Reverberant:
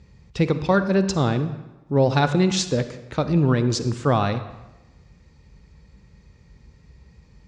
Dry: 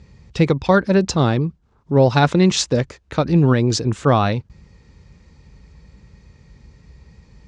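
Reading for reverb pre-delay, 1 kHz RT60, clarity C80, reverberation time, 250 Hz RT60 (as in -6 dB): 38 ms, 1.1 s, 13.5 dB, 1.1 s, 1.1 s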